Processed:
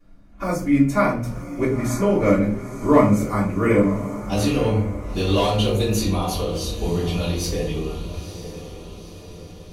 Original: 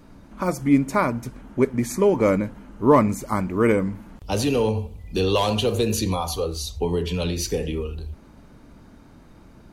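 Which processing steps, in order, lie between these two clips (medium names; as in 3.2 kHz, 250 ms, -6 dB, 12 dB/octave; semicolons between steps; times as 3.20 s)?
gate -39 dBFS, range -10 dB; echo that smears into a reverb 940 ms, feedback 53%, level -12 dB; reverberation RT60 0.40 s, pre-delay 3 ms, DRR -12.5 dB; trim -11.5 dB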